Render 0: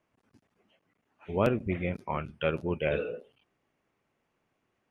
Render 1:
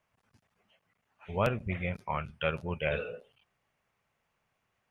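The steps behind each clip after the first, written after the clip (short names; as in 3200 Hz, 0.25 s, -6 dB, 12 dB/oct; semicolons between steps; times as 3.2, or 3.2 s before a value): bell 310 Hz -13.5 dB 1.1 oct; gain +1.5 dB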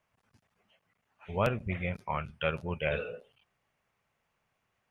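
nothing audible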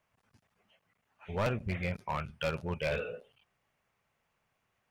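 hard clip -26 dBFS, distortion -10 dB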